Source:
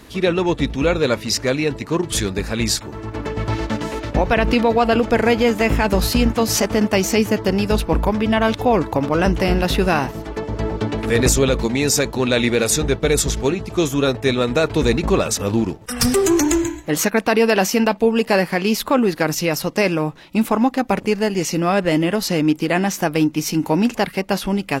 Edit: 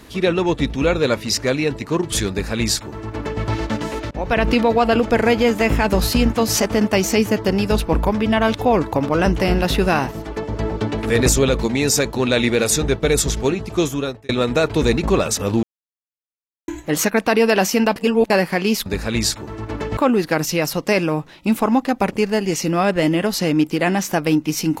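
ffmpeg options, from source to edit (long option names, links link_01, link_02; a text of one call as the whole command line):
ffmpeg -i in.wav -filter_complex "[0:a]asplit=9[link_01][link_02][link_03][link_04][link_05][link_06][link_07][link_08][link_09];[link_01]atrim=end=4.11,asetpts=PTS-STARTPTS,afade=type=out:start_time=4.106:duration=0.004:curve=hsin:silence=0.0630957[link_10];[link_02]atrim=start=4.11:end=14.29,asetpts=PTS-STARTPTS,afade=type=in:duration=0.37:curve=qsin:silence=0.0630957,afade=type=out:start_time=9.69:duration=0.49[link_11];[link_03]atrim=start=14.29:end=15.63,asetpts=PTS-STARTPTS,afade=type=in:duration=0.004:curve=hsin,afade=type=out:start_time=1.336:duration=0.004:curve=hsin[link_12];[link_04]atrim=start=15.63:end=16.68,asetpts=PTS-STARTPTS,volume=0[link_13];[link_05]atrim=start=16.68:end=17.962,asetpts=PTS-STARTPTS,afade=type=in:duration=0.004:curve=hsin[link_14];[link_06]atrim=start=17.958:end=18.302,asetpts=PTS-STARTPTS,areverse[link_15];[link_07]atrim=start=18.298:end=18.862[link_16];[link_08]atrim=start=2.308:end=3.422[link_17];[link_09]atrim=start=18.858[link_18];[link_10][link_11][link_12][link_13][link_14]concat=n=5:v=0:a=1[link_19];[link_19][link_15]acrossfade=duration=0.004:curve1=hsin:curve2=hsin[link_20];[link_20][link_16]acrossfade=duration=0.004:curve1=hsin:curve2=hsin[link_21];[link_21][link_17]acrossfade=duration=0.004:curve1=hsin:curve2=hsin[link_22];[link_22][link_18]acrossfade=duration=0.004:curve1=hsin:curve2=hsin" out.wav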